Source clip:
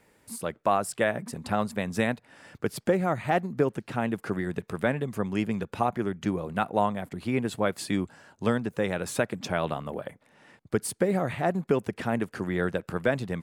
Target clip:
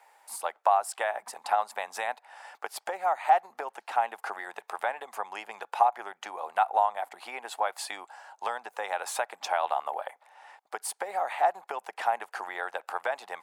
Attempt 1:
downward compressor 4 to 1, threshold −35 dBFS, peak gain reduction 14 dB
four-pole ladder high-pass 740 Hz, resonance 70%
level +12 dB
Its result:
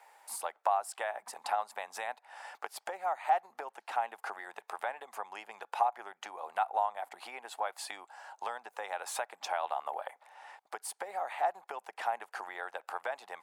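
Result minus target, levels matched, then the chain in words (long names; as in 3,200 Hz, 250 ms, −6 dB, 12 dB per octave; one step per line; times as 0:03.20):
downward compressor: peak gain reduction +6.5 dB
downward compressor 4 to 1, threshold −26.5 dBFS, peak gain reduction 7.5 dB
four-pole ladder high-pass 740 Hz, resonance 70%
level +12 dB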